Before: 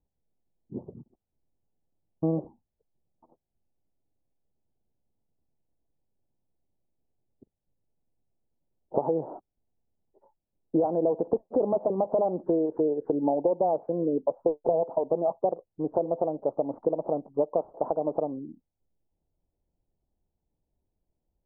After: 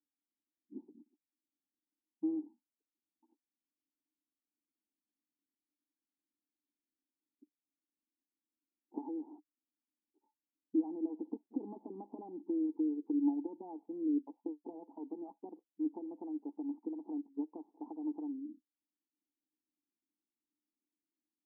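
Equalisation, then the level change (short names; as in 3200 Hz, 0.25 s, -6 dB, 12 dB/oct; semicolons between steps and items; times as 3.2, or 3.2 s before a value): vowel filter u; brick-wall FIR high-pass 190 Hz; bell 950 Hz -13.5 dB 2.9 oct; +4.5 dB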